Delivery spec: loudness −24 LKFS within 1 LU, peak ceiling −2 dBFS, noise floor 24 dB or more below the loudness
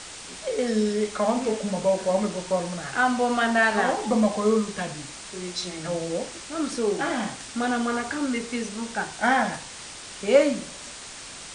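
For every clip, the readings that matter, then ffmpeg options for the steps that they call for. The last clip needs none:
background noise floor −40 dBFS; target noise floor −50 dBFS; integrated loudness −25.5 LKFS; sample peak −5.0 dBFS; target loudness −24.0 LKFS
→ -af "afftdn=noise_reduction=10:noise_floor=-40"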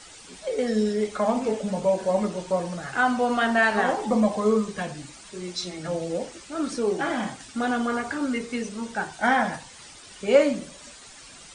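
background noise floor −46 dBFS; target noise floor −50 dBFS
→ -af "afftdn=noise_reduction=6:noise_floor=-46"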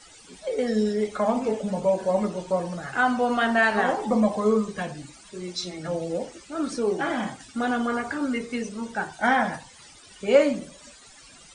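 background noise floor −50 dBFS; integrated loudness −25.5 LKFS; sample peak −5.0 dBFS; target loudness −24.0 LKFS
→ -af "volume=1.5dB"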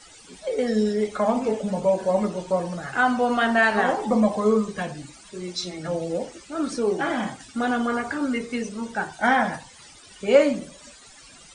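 integrated loudness −24.0 LKFS; sample peak −3.5 dBFS; background noise floor −48 dBFS

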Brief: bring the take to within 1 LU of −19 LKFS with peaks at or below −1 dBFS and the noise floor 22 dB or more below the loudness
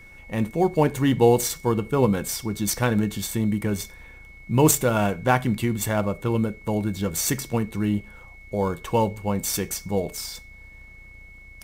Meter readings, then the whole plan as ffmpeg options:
interfering tone 2,200 Hz; level of the tone −46 dBFS; integrated loudness −24.0 LKFS; sample peak −5.0 dBFS; target loudness −19.0 LKFS
→ -af "bandreject=frequency=2200:width=30"
-af "volume=5dB,alimiter=limit=-1dB:level=0:latency=1"

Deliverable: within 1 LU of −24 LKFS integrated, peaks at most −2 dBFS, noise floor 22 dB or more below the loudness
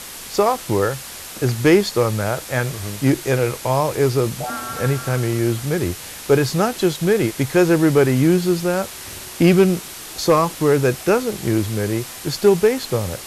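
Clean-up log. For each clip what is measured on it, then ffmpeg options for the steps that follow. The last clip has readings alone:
background noise floor −35 dBFS; target noise floor −41 dBFS; integrated loudness −19.0 LKFS; sample peak −4.0 dBFS; target loudness −24.0 LKFS
→ -af "afftdn=noise_reduction=6:noise_floor=-35"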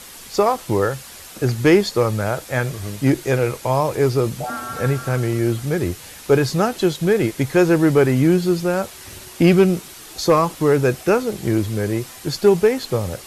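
background noise floor −39 dBFS; target noise floor −41 dBFS
→ -af "afftdn=noise_reduction=6:noise_floor=-39"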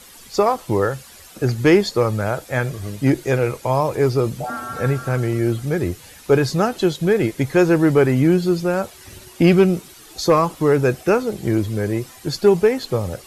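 background noise floor −44 dBFS; integrated loudness −19.0 LKFS; sample peak −4.5 dBFS; target loudness −24.0 LKFS
→ -af "volume=-5dB"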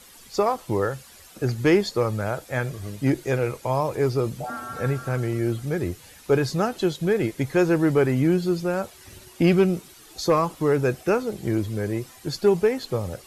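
integrated loudness −24.0 LKFS; sample peak −9.5 dBFS; background noise floor −49 dBFS

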